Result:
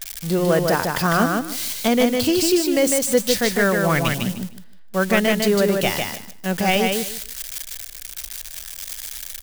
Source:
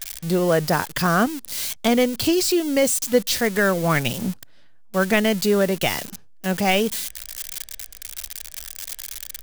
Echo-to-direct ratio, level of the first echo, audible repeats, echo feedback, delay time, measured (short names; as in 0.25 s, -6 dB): -4.0 dB, -4.0 dB, 3, 19%, 0.152 s